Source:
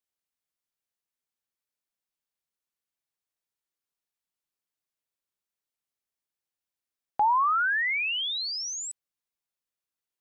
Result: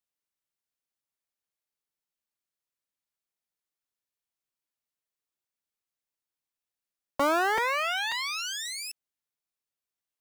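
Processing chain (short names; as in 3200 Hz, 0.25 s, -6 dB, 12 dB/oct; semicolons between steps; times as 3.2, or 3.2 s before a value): cycle switcher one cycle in 3, inverted; crackling interface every 0.54 s, samples 256, repeat, from 0.55; gain -2 dB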